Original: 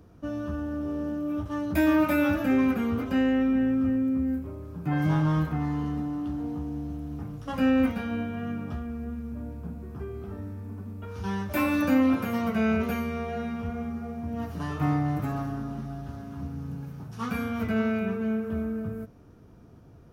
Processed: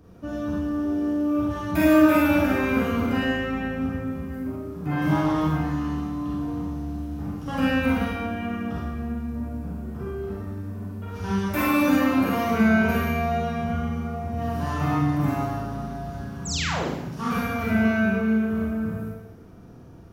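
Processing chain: painted sound fall, 16.45–16.88 s, 210–8200 Hz -34 dBFS; Schroeder reverb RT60 0.95 s, combs from 33 ms, DRR -5.5 dB

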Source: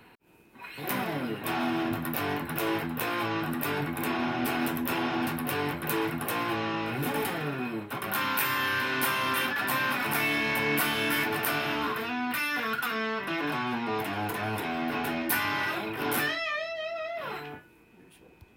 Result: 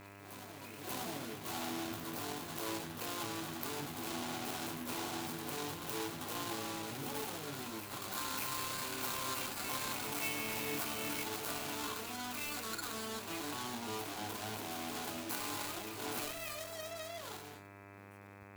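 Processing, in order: median filter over 25 samples; pre-emphasis filter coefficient 0.9; hum notches 50/100/150/200/250 Hz; mains buzz 100 Hz, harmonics 26, -62 dBFS -3 dB/octave; on a send: reverse echo 587 ms -9.5 dB; on the sum: trim +7.5 dB

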